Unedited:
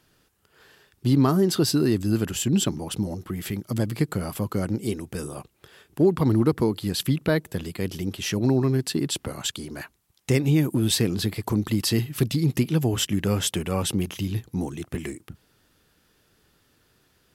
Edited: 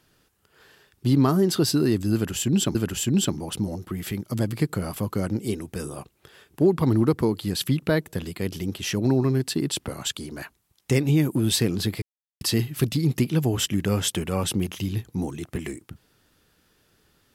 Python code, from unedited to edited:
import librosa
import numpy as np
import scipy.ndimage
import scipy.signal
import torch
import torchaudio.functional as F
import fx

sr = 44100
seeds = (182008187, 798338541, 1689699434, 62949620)

y = fx.edit(x, sr, fx.repeat(start_s=2.14, length_s=0.61, count=2),
    fx.silence(start_s=11.41, length_s=0.39), tone=tone)